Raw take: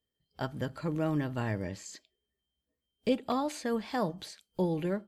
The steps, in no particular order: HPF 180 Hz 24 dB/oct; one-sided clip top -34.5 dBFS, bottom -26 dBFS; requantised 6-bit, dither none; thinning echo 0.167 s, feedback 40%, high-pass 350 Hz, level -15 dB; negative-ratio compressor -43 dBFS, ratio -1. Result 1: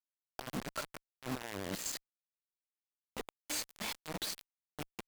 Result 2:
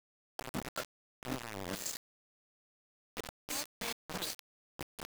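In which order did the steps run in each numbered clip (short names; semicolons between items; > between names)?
HPF > negative-ratio compressor > thinning echo > requantised > one-sided clip; HPF > one-sided clip > thinning echo > negative-ratio compressor > requantised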